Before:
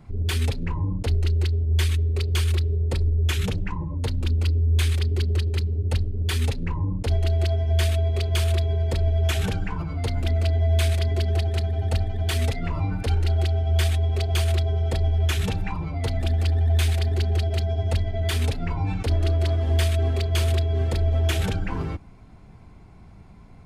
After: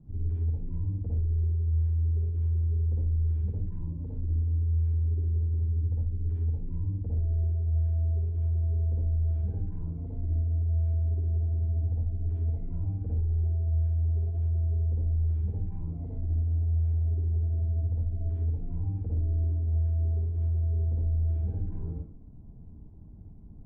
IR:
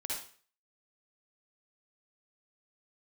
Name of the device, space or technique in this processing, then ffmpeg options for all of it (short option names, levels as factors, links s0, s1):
television next door: -filter_complex "[0:a]acompressor=threshold=0.0316:ratio=5,lowpass=280[s0];[1:a]atrim=start_sample=2205[s1];[s0][s1]afir=irnorm=-1:irlink=0,asettb=1/sr,asplit=3[s2][s3][s4];[s2]atrim=end=14.494[s5];[s3]atrim=start=14.49:end=15.11,asetpts=PTS-STARTPTS,afade=t=in:d=0.004:c=qsin,afade=t=out:st=0.616:d=0.004:c=qsin,lowpass=f=1300:p=1[s6];[s4]atrim=start=15.106[s7];[s5][s6]acrossfade=d=0.004:c1=hsin:c2=qsin[s8];[s8][s7]acrossfade=d=0.004:c1=qsin:c2=hsin"